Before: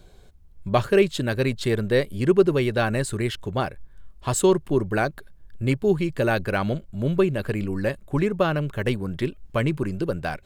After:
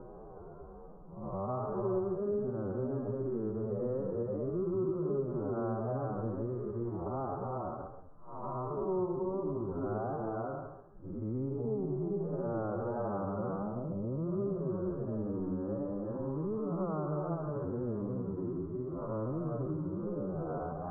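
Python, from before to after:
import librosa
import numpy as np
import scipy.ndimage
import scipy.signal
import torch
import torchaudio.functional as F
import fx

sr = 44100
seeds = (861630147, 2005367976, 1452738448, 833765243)

p1 = fx.spec_blur(x, sr, span_ms=144.0)
p2 = fx.level_steps(p1, sr, step_db=19)
p3 = p1 + (p2 * librosa.db_to_amplitude(-2.5))
p4 = fx.low_shelf(p3, sr, hz=220.0, db=-7.0)
p5 = fx.echo_multitap(p4, sr, ms=(160, 185), db=(-7.0, -3.5))
p6 = fx.vibrato(p5, sr, rate_hz=2.8, depth_cents=81.0)
p7 = scipy.signal.sosfilt(scipy.signal.cheby1(6, 1.0, 1300.0, 'lowpass', fs=sr, output='sos'), p6)
p8 = fx.stretch_vocoder(p7, sr, factor=2.0)
p9 = p8 + fx.echo_single(p8, sr, ms=135, db=-11.5, dry=0)
p10 = fx.band_squash(p9, sr, depth_pct=70)
y = p10 * librosa.db_to_amplitude(-9.0)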